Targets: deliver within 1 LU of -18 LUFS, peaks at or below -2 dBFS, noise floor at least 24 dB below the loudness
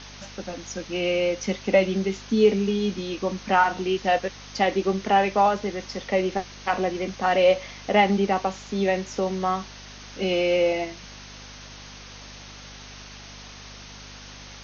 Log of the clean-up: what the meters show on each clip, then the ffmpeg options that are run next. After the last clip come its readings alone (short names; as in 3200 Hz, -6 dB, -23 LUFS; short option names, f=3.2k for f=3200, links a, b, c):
hum 50 Hz; harmonics up to 250 Hz; hum level -45 dBFS; noise floor -43 dBFS; noise floor target -48 dBFS; loudness -24.0 LUFS; peak -6.5 dBFS; loudness target -18.0 LUFS
-> -af "bandreject=f=50:t=h:w=4,bandreject=f=100:t=h:w=4,bandreject=f=150:t=h:w=4,bandreject=f=200:t=h:w=4,bandreject=f=250:t=h:w=4"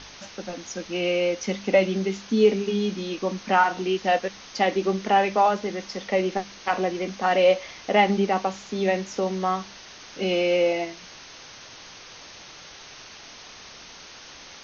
hum none; noise floor -45 dBFS; noise floor target -48 dBFS
-> -af "afftdn=nr=6:nf=-45"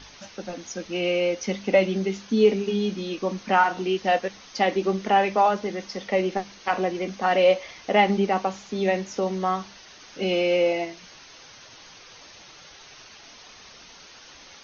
noise floor -48 dBFS; loudness -24.0 LUFS; peak -6.5 dBFS; loudness target -18.0 LUFS
-> -af "volume=6dB,alimiter=limit=-2dB:level=0:latency=1"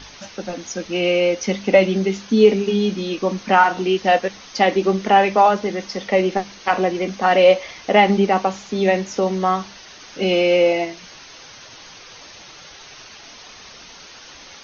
loudness -18.0 LUFS; peak -2.0 dBFS; noise floor -42 dBFS